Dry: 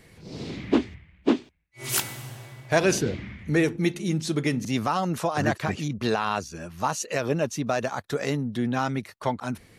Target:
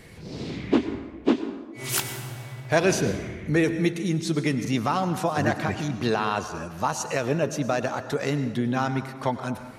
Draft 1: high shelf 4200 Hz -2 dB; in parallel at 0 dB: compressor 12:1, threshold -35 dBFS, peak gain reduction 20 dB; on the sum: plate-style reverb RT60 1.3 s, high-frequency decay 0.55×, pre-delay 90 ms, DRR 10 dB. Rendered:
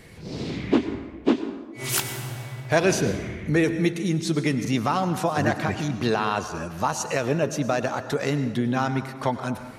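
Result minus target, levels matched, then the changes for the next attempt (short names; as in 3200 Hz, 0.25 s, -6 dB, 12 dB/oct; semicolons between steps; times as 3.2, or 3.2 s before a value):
compressor: peak gain reduction -9.5 dB
change: compressor 12:1, threshold -45.5 dBFS, peak gain reduction 29.5 dB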